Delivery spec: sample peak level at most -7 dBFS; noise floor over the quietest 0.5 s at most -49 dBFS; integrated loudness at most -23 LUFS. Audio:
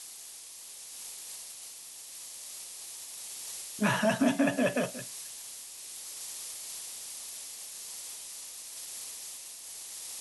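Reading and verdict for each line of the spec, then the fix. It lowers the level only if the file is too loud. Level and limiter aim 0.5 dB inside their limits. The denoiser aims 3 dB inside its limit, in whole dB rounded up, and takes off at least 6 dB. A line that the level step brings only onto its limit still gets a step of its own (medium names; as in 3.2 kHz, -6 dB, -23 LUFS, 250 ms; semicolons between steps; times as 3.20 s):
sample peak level -15.0 dBFS: pass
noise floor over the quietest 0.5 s -47 dBFS: fail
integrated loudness -35.5 LUFS: pass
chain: noise reduction 6 dB, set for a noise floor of -47 dBFS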